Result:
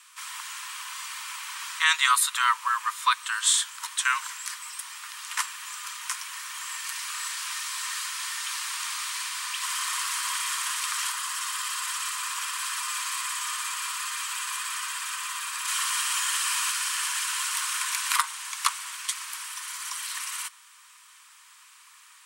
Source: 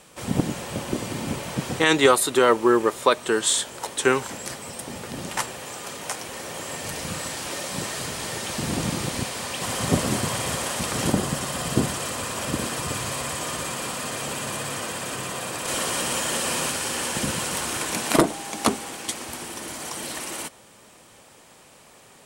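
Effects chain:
Butterworth high-pass 970 Hz 96 dB per octave

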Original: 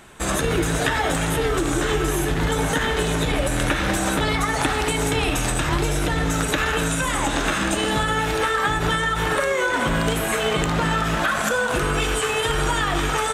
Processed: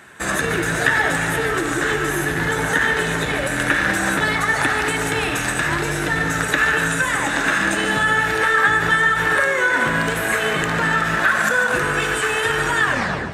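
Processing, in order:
turntable brake at the end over 0.48 s
high-pass filter 92 Hz 12 dB per octave
parametric band 1,700 Hz +10.5 dB 0.56 octaves
notch filter 3,200 Hz, Q 21
on a send: echo with a time of its own for lows and highs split 670 Hz, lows 198 ms, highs 146 ms, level −10 dB
on the sum: level −1 dB

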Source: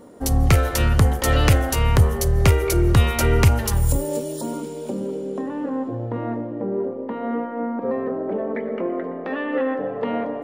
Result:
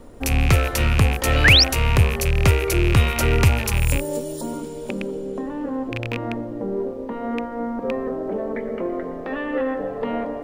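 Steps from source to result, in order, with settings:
loose part that buzzes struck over −25 dBFS, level −13 dBFS
sound drawn into the spectrogram rise, 0:01.44–0:01.64, 1,500–5,900 Hz −12 dBFS
background noise brown −44 dBFS
level −1 dB

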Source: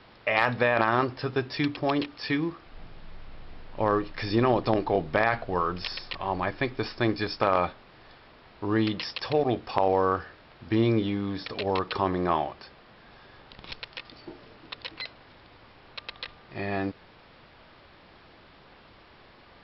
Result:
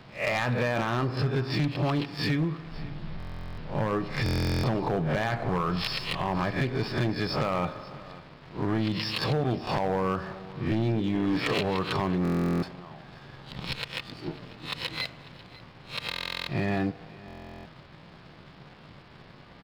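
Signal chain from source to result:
peak hold with a rise ahead of every peak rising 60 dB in 0.32 s
parametric band 150 Hz +13.5 dB 0.93 octaves
spring reverb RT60 1.2 s, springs 37 ms, chirp 50 ms, DRR 16 dB
leveller curve on the samples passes 1
downward compressor 3 to 1, threshold −25 dBFS, peak gain reduction 10 dB
gain on a spectral selection 0:11.14–0:11.58, 250–3,400 Hz +7 dB
on a send: single-tap delay 545 ms −20 dB
on the sum: gain into a clipping stage and back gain 21 dB
buffer that repeats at 0:03.18/0:04.24/0:12.23/0:16.09/0:17.26, samples 1,024, times 16

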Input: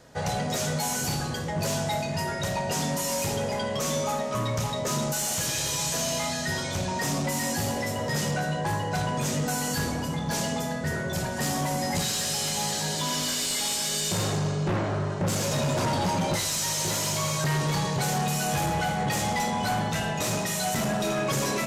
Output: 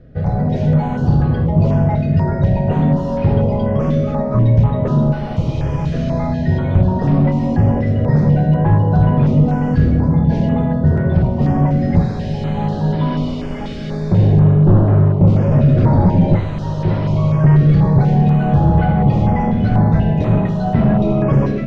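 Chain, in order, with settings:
spectral tilt −4 dB per octave
automatic gain control gain up to 5 dB
high-frequency loss of the air 280 metres
notch on a step sequencer 4.1 Hz 930–7,000 Hz
level +2.5 dB

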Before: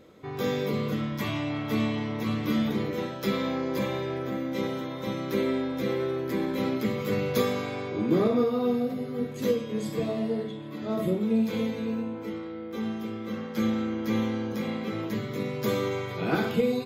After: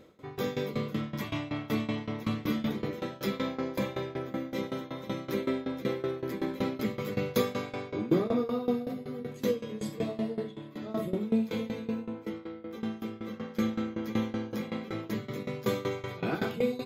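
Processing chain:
shaped tremolo saw down 5.3 Hz, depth 90%

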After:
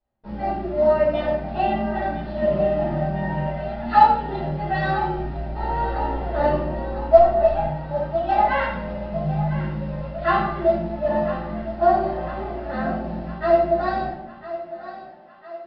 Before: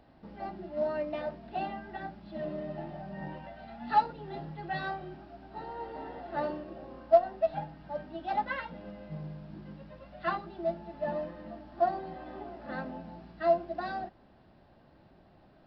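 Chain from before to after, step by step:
noise gate −50 dBFS, range −33 dB
0:05.14–0:07.67: low-shelf EQ 87 Hz +9.5 dB
speech leveller within 4 dB 2 s
high-frequency loss of the air 51 metres
feedback echo with a high-pass in the loop 1,004 ms, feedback 60%, high-pass 330 Hz, level −13 dB
rectangular room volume 170 cubic metres, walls mixed, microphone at 5.2 metres
level −5 dB

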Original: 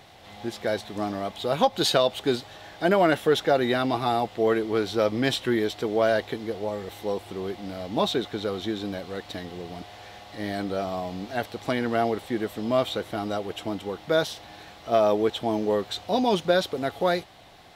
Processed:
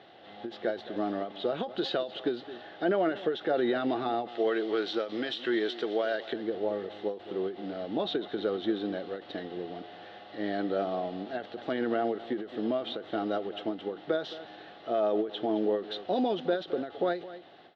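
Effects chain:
0:04.28–0:06.33: spectral tilt +3 dB per octave
brickwall limiter −18 dBFS, peak gain reduction 11.5 dB
loudspeaker in its box 240–3,400 Hz, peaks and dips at 350 Hz +4 dB, 990 Hz −10 dB, 2,300 Hz −10 dB
slap from a distant wall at 37 metres, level −16 dB
every ending faded ahead of time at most 160 dB per second

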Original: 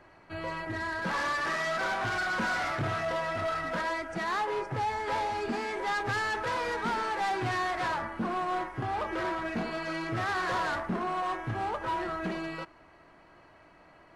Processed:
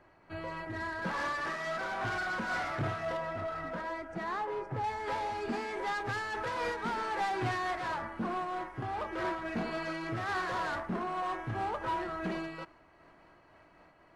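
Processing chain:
high-shelf EQ 2,100 Hz −4.5 dB, from 0:03.17 −11.5 dB, from 0:04.84 −2 dB
amplitude modulation by smooth noise, depth 55%

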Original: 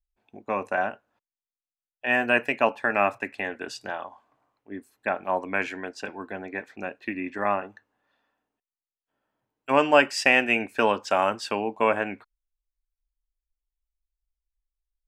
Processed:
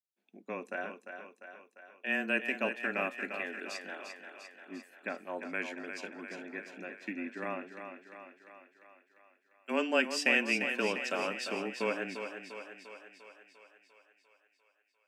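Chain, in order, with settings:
linear-phase brick-wall high-pass 200 Hz
parametric band 890 Hz −12 dB 1.3 octaves
feedback echo with a high-pass in the loop 348 ms, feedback 63%, high-pass 260 Hz, level −7.5 dB
frequency shifter −17 Hz
level −5.5 dB

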